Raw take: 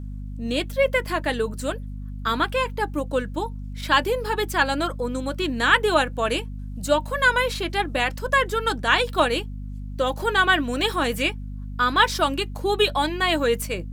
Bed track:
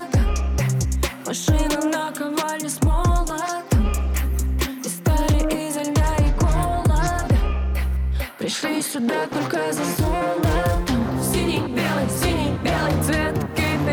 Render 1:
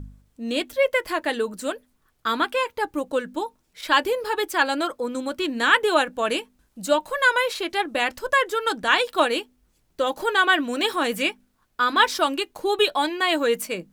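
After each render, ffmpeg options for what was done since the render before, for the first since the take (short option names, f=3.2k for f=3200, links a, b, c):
-af "bandreject=f=50:t=h:w=4,bandreject=f=100:t=h:w=4,bandreject=f=150:t=h:w=4,bandreject=f=200:t=h:w=4,bandreject=f=250:t=h:w=4"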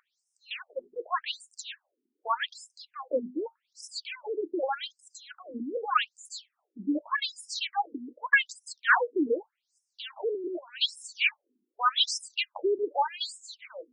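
-af "aphaser=in_gain=1:out_gain=1:delay=1.7:decay=0.34:speed=1.3:type=triangular,afftfilt=real='re*between(b*sr/1024,290*pow(7300/290,0.5+0.5*sin(2*PI*0.84*pts/sr))/1.41,290*pow(7300/290,0.5+0.5*sin(2*PI*0.84*pts/sr))*1.41)':imag='im*between(b*sr/1024,290*pow(7300/290,0.5+0.5*sin(2*PI*0.84*pts/sr))/1.41,290*pow(7300/290,0.5+0.5*sin(2*PI*0.84*pts/sr))*1.41)':win_size=1024:overlap=0.75"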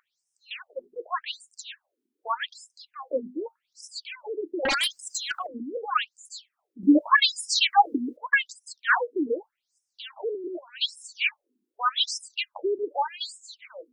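-filter_complex "[0:a]asettb=1/sr,asplit=3[a][b][c];[a]atrim=end=2.974[d];[b]atrim=start=2.97:end=3.99,asetpts=PTS-STARTPTS,afade=t=in:d=0.004:c=qsin,afade=t=out:st=1.016:d=0.004:c=qsin,asplit=2[e][f];[f]adelay=15,volume=-13.5dB[g];[e][g]amix=inputs=2:normalize=0,atrim=end_sample=44982[h];[c]atrim=start=3.986[i];[d][h]acrossfade=d=0.004:c1=hsin:c2=qsin[j];[j][i]acrossfade=d=0.004:c1=qsin:c2=hsin,asettb=1/sr,asplit=3[k][l][m];[k]atrim=end=4.654[n];[l]atrim=start=4.65:end=5.47,asetpts=PTS-STARTPTS,afade=t=in:d=0.004:c=qsin,afade=t=out:st=0.816:d=0.004:c=qsin,aeval=exprs='0.0944*sin(PI/2*4.47*val(0)/0.0944)':c=same[o];[m]atrim=start=5.466[p];[n][o]acrossfade=d=0.004:c1=hsin:c2=qsin[q];[q][p]acrossfade=d=0.004:c1=qsin:c2=hsin,asplit=3[r][s][t];[r]atrim=end=6.832[u];[s]atrim=start=6.828:end=8.172,asetpts=PTS-STARTPTS,volume=11dB[v];[t]atrim=start=8.168[w];[u][v]acrossfade=d=0.004:c1=hsin:c2=hsin[x];[x][w]acrossfade=d=0.004:c1=hsin:c2=hsin"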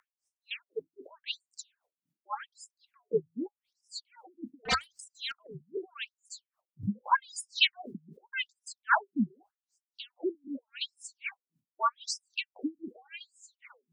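-af "afreqshift=-86,aeval=exprs='val(0)*pow(10,-36*(0.5-0.5*cos(2*PI*3.8*n/s))/20)':c=same"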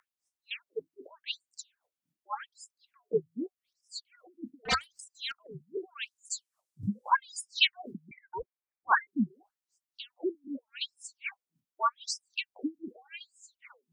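-filter_complex "[0:a]asettb=1/sr,asplit=3[a][b][c];[a]atrim=end=3.134[d];[b]atrim=start=3.13:end=4.27,asetpts=PTS-STARTPTS,afade=t=in:d=0.004:c=qsin,afade=t=out:st=1.136:d=0.004:c=qsin,asuperstop=centerf=880:order=12:qfactor=3.2[e];[c]atrim=start=4.266[f];[d][e]acrossfade=d=0.004:c1=hsin:c2=qsin[g];[g][f]acrossfade=d=0.004:c1=qsin:c2=hsin,asettb=1/sr,asplit=3[h][i][j];[h]atrim=end=6.034[k];[i]atrim=start=6.03:end=7.1,asetpts=PTS-STARTPTS,afade=t=in:d=0.004:c=qsin,afade=t=out:st=1.066:d=0.004:c=qsin,equalizer=f=7.9k:t=o:w=1.6:g=11[l];[j]atrim=start=7.096[m];[k][l]acrossfade=d=0.004:c1=hsin:c2=qsin[n];[n][m]acrossfade=d=0.004:c1=qsin:c2=hsin,asettb=1/sr,asplit=3[o][p][q];[o]atrim=end=8.114[r];[p]atrim=start=8.11:end=9.07,asetpts=PTS-STARTPTS,afade=t=in:d=0.004:c=qsin,afade=t=out:st=0.956:d=0.004:c=qsin,lowpass=f=2.1k:t=q:w=0.5098,lowpass=f=2.1k:t=q:w=0.6013,lowpass=f=2.1k:t=q:w=0.9,lowpass=f=2.1k:t=q:w=2.563,afreqshift=-2500[s];[q]atrim=start=9.066[t];[r][s]acrossfade=d=0.004:c1=hsin:c2=qsin[u];[u][t]acrossfade=d=0.004:c1=qsin:c2=hsin"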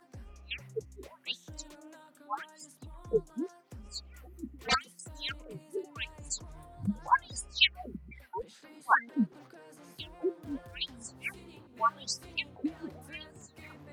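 -filter_complex "[1:a]volume=-30.5dB[a];[0:a][a]amix=inputs=2:normalize=0"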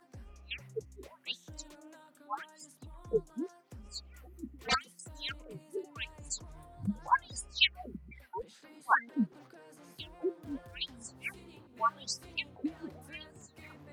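-af "volume=-2dB"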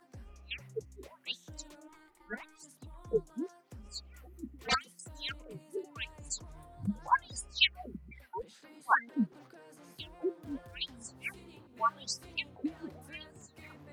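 -filter_complex "[0:a]asplit=3[a][b][c];[a]afade=t=out:st=1.87:d=0.02[d];[b]aeval=exprs='val(0)*sin(2*PI*620*n/s)':c=same,afade=t=in:st=1.87:d=0.02,afade=t=out:st=2.62:d=0.02[e];[c]afade=t=in:st=2.62:d=0.02[f];[d][e][f]amix=inputs=3:normalize=0"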